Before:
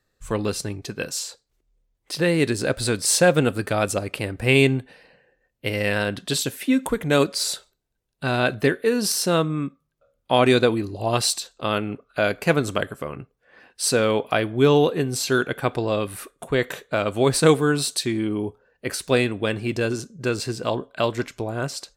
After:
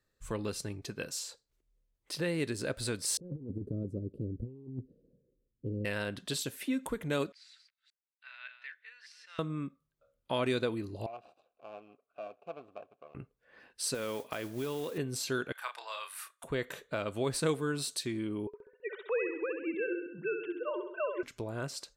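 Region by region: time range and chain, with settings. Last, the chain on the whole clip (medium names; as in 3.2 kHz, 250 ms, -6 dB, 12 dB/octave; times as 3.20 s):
3.17–5.85 s: inverse Chebyshev low-pass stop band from 790 Hz + compressor with a negative ratio -27 dBFS, ratio -0.5
7.32–9.39 s: chunks repeated in reverse 194 ms, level -9 dB + ladder high-pass 1.7 kHz, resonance 45% + tape spacing loss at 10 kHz 31 dB
11.06–13.15 s: median filter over 41 samples + upward compressor, threshold -40 dBFS + vowel filter a
13.94–14.98 s: high-pass 150 Hz 6 dB/octave + compression 5:1, threshold -21 dBFS + modulation noise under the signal 17 dB
15.52–16.44 s: high-pass 900 Hz 24 dB/octave + doubling 32 ms -6 dB
18.47–21.23 s: formants replaced by sine waves + feedback delay 66 ms, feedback 50%, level -7 dB
whole clip: band-stop 750 Hz, Q 12; compression 1.5:1, threshold -31 dBFS; trim -7.5 dB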